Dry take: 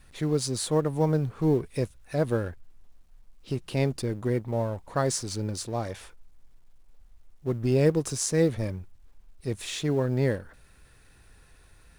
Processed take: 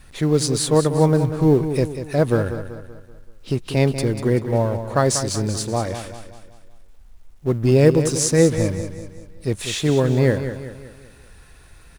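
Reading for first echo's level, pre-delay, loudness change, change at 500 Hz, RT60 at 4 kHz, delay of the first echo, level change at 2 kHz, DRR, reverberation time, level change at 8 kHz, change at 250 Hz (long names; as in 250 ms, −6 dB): −10.0 dB, no reverb audible, +8.5 dB, +8.5 dB, no reverb audible, 191 ms, +8.5 dB, no reverb audible, no reverb audible, +8.5 dB, +8.5 dB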